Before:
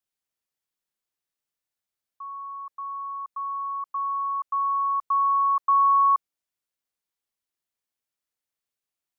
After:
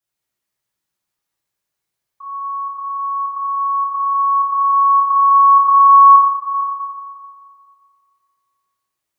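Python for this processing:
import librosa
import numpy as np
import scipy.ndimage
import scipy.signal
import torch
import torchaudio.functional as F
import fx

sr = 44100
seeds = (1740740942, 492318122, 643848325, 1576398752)

y = x + 10.0 ** (-7.5 / 20.0) * np.pad(x, (int(448 * sr / 1000.0), 0))[:len(x)]
y = fx.rev_fdn(y, sr, rt60_s=2.1, lf_ratio=0.95, hf_ratio=0.55, size_ms=49.0, drr_db=-8.5)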